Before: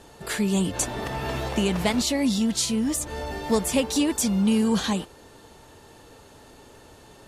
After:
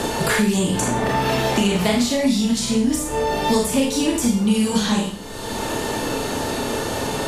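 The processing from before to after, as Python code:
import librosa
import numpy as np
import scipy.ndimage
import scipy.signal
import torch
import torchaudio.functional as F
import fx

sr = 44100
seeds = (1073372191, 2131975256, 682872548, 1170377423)

y = fx.low_shelf(x, sr, hz=190.0, db=3.5)
y = fx.rev_schroeder(y, sr, rt60_s=0.41, comb_ms=26, drr_db=-2.0)
y = fx.band_squash(y, sr, depth_pct=100)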